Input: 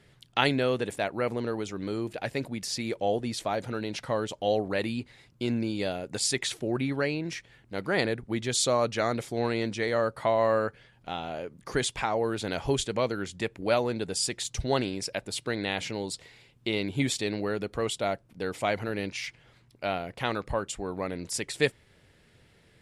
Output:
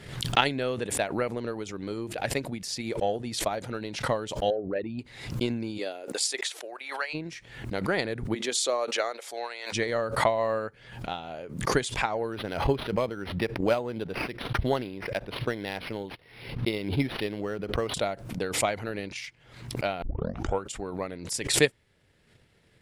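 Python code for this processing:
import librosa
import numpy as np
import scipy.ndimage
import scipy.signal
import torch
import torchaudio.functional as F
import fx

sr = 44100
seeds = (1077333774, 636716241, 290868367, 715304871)

y = fx.envelope_sharpen(x, sr, power=2.0, at=(4.5, 4.99))
y = fx.highpass(y, sr, hz=fx.line((5.77, 260.0), (7.13, 800.0)), slope=24, at=(5.77, 7.13), fade=0.02)
y = fx.highpass(y, sr, hz=fx.line((8.34, 250.0), (9.72, 750.0)), slope=24, at=(8.34, 9.72), fade=0.02)
y = fx.resample_linear(y, sr, factor=6, at=(12.32, 17.94))
y = fx.edit(y, sr, fx.tape_start(start_s=20.02, length_s=0.62), tone=tone)
y = fx.transient(y, sr, attack_db=8, sustain_db=-3)
y = fx.pre_swell(y, sr, db_per_s=77.0)
y = F.gain(torch.from_numpy(y), -4.0).numpy()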